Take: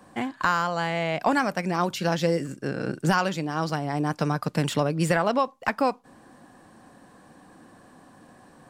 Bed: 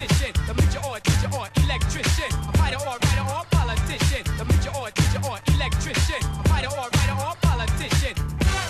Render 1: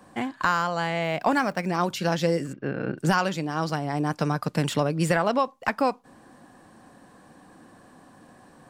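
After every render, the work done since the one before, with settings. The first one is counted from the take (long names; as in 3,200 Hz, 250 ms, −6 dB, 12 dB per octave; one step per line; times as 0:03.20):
0:01.03–0:01.68: running median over 5 samples
0:02.53–0:02.98: low-pass filter 3,200 Hz 24 dB per octave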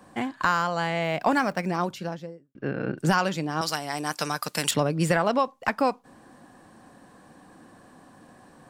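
0:01.54–0:02.55: fade out and dull
0:03.61–0:04.71: spectral tilt +4 dB per octave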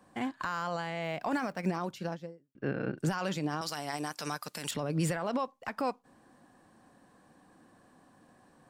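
brickwall limiter −21 dBFS, peak gain reduction 11.5 dB
expander for the loud parts 1.5 to 1, over −45 dBFS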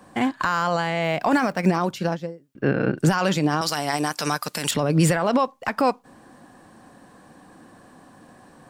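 level +12 dB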